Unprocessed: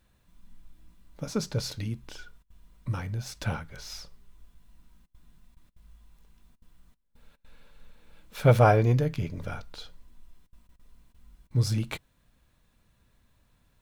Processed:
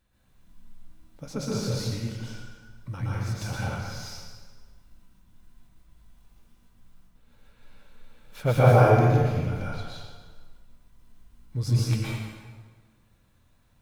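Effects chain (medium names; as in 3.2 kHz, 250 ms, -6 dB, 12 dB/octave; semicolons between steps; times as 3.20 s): plate-style reverb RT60 1.5 s, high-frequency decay 0.75×, pre-delay 105 ms, DRR -7 dB; trim -5.5 dB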